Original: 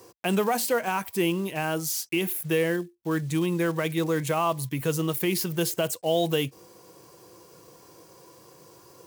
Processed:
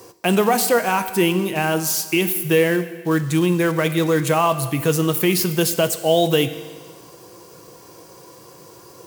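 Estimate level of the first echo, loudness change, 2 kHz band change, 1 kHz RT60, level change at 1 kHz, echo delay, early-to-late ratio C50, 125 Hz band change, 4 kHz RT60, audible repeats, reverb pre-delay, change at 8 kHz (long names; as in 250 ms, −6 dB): no echo audible, +7.5 dB, +8.0 dB, 1.5 s, +8.0 dB, no echo audible, 12.5 dB, +7.5 dB, 1.5 s, no echo audible, 12 ms, +8.0 dB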